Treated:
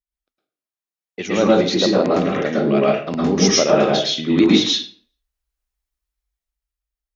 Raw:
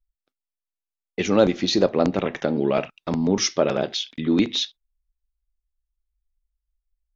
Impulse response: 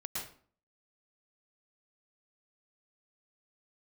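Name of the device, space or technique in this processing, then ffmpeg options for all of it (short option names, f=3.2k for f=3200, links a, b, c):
far laptop microphone: -filter_complex "[1:a]atrim=start_sample=2205[a];[0:a][a]afir=irnorm=-1:irlink=0,highpass=f=180:p=1,dynaudnorm=f=220:g=11:m=11dB,asettb=1/sr,asplit=3[b][c][d];[b]atrim=end=2.204[e];[c]atrim=start=2.2:end=3.66,asetpts=PTS-STARTPTS,afade=t=in:d=0.004:c=qsin,afade=t=out:st=1.456:d=0.004:c=qsin,bandreject=f=900:w=6.1[f];[d]atrim=start=3.656[g];[e][f]acrossfade=d=0.004:c1=hsin:c2=qsin[h];[h][g]acrossfade=d=0.004:c1=qsin:c2=hsin"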